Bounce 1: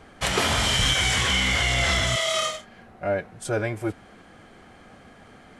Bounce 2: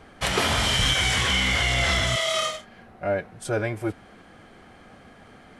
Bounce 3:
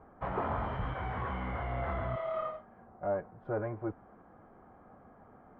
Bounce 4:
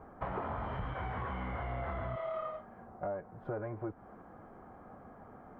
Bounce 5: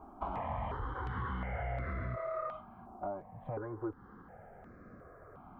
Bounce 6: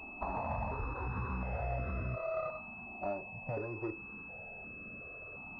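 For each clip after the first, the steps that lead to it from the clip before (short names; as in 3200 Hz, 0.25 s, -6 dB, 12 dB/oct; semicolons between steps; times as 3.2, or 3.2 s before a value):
bell 7200 Hz -3 dB 0.51 oct
tube stage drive 16 dB, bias 0.3; ladder low-pass 1300 Hz, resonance 35%
compressor, threshold -39 dBFS, peak gain reduction 11 dB; gain +4 dB
step phaser 2.8 Hz 500–3100 Hz; gain +2.5 dB
on a send at -9.5 dB: reverb RT60 0.35 s, pre-delay 3 ms; on the sum: pulse-width modulation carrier 2600 Hz; gain +1 dB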